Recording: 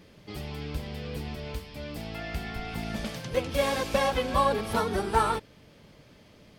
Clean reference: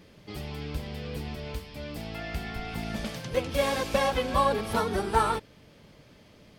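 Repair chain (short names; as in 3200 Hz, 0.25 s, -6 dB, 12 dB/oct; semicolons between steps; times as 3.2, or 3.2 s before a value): clip repair -13 dBFS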